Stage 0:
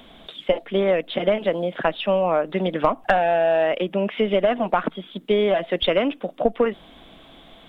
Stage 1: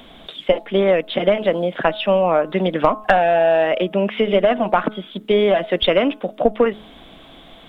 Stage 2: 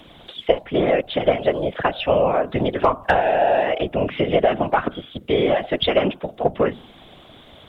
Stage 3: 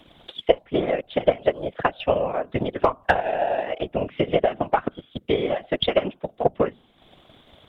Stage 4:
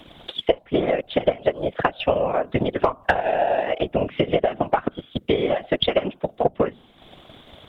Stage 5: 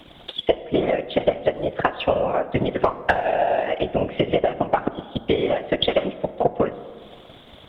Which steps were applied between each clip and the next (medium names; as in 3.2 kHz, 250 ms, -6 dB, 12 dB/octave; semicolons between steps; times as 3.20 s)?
de-hum 213.2 Hz, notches 7; trim +4 dB
whisper effect; trim -2.5 dB
transient shaper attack +7 dB, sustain -7 dB; trim -7 dB
compression 2.5:1, threshold -24 dBFS, peak gain reduction 9.5 dB; trim +6 dB
plate-style reverb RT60 1.9 s, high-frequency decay 0.5×, DRR 12.5 dB